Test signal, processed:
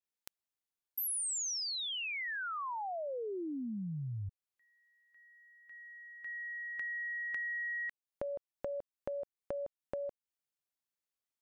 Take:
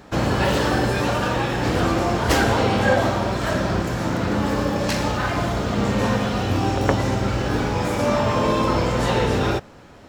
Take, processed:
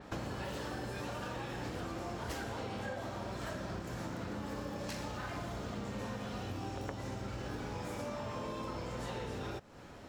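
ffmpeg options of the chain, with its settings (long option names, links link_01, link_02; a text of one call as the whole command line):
ffmpeg -i in.wav -af "acompressor=threshold=-32dB:ratio=8,adynamicequalizer=threshold=0.00316:dfrequency=5400:dqfactor=0.7:tfrequency=5400:tqfactor=0.7:attack=5:release=100:ratio=0.375:range=1.5:mode=boostabove:tftype=highshelf,volume=-6dB" out.wav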